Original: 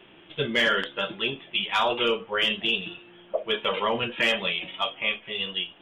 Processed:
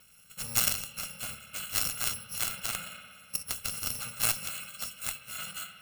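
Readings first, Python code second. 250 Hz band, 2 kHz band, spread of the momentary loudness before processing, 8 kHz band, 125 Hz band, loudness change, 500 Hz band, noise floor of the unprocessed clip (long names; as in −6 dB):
−16.0 dB, −13.0 dB, 8 LU, +20.0 dB, −4.0 dB, −6.0 dB, −23.0 dB, −53 dBFS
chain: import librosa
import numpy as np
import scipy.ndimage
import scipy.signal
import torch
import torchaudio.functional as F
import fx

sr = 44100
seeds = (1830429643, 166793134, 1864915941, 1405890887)

y = fx.bit_reversed(x, sr, seeds[0], block=128)
y = fx.rev_spring(y, sr, rt60_s=2.2, pass_ms=(57,), chirp_ms=20, drr_db=10.5)
y = fx.cheby_harmonics(y, sr, harmonics=(2, 3, 4), levels_db=(-12, -7, -23), full_scale_db=-12.0)
y = y * 10.0 ** (3.5 / 20.0)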